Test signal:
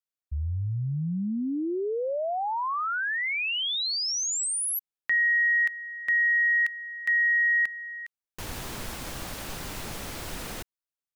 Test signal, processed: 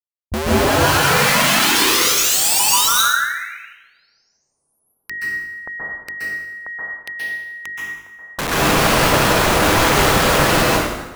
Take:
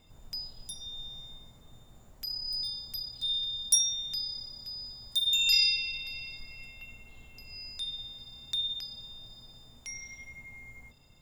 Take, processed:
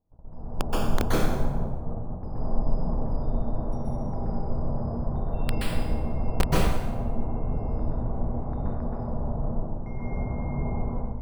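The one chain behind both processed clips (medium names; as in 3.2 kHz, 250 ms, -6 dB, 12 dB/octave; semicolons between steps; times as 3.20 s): hum notches 50/100/150/200/250/300/350/400 Hz; gate -51 dBFS, range -20 dB; inverse Chebyshev low-pass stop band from 3.2 kHz, stop band 60 dB; level rider gain up to 16.5 dB; integer overflow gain 22 dB; plate-style reverb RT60 1.1 s, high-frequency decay 0.8×, pre-delay 115 ms, DRR -6.5 dB; trim +5 dB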